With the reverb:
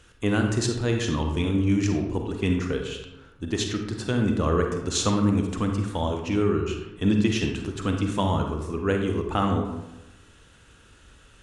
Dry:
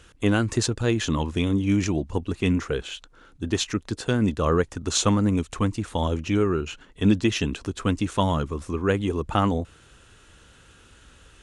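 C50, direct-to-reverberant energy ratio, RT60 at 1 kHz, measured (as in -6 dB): 4.5 dB, 3.0 dB, 0.95 s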